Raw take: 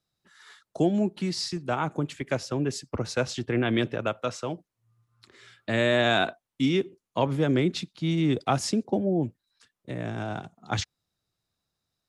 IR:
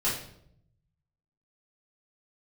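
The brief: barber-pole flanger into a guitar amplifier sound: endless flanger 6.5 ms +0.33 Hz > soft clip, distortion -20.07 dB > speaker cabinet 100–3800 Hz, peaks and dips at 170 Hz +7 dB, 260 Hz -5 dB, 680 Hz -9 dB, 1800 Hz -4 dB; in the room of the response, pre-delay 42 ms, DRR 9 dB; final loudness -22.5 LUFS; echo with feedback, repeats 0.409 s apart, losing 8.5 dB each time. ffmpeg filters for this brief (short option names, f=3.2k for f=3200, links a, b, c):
-filter_complex "[0:a]aecho=1:1:409|818|1227|1636:0.376|0.143|0.0543|0.0206,asplit=2[a][b];[1:a]atrim=start_sample=2205,adelay=42[c];[b][c]afir=irnorm=-1:irlink=0,volume=-18dB[d];[a][d]amix=inputs=2:normalize=0,asplit=2[e][f];[f]adelay=6.5,afreqshift=0.33[g];[e][g]amix=inputs=2:normalize=1,asoftclip=threshold=-17dB,highpass=100,equalizer=f=170:t=q:w=4:g=7,equalizer=f=260:t=q:w=4:g=-5,equalizer=f=680:t=q:w=4:g=-9,equalizer=f=1.8k:t=q:w=4:g=-4,lowpass=f=3.8k:w=0.5412,lowpass=f=3.8k:w=1.3066,volume=8dB"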